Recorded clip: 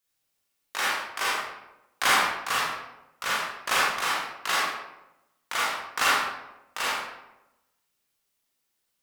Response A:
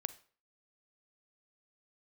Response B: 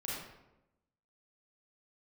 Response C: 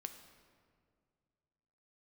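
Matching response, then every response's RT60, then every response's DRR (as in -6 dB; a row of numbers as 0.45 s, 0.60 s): B; 0.45 s, 0.95 s, 2.1 s; 14.5 dB, -6.5 dB, 7.0 dB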